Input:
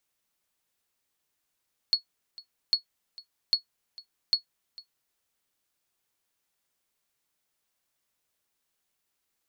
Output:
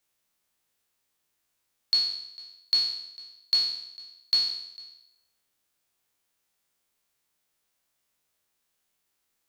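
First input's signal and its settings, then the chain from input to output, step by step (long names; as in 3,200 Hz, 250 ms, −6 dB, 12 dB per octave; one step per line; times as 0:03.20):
ping with an echo 4,360 Hz, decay 0.11 s, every 0.80 s, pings 4, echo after 0.45 s, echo −21.5 dB −13 dBFS
peak hold with a decay on every bin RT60 0.81 s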